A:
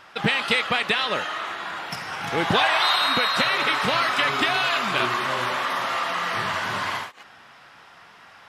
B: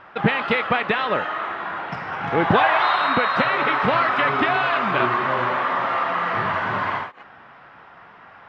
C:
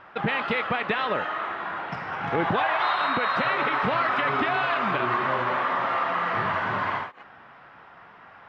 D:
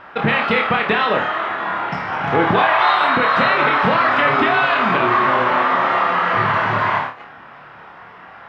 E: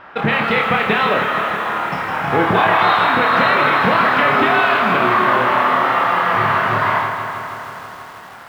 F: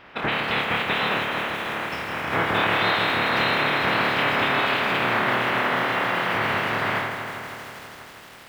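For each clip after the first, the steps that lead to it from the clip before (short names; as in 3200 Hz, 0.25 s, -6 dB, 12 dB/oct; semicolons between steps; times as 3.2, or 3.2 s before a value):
LPF 1700 Hz 12 dB/oct; gain +5 dB
limiter -12 dBFS, peak gain reduction 7 dB; gain -3 dB
flutter echo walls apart 4.7 m, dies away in 0.31 s; gain +7.5 dB
lo-fi delay 0.16 s, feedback 80%, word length 7-bit, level -9 dB
spectral limiter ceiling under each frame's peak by 16 dB; gain -7.5 dB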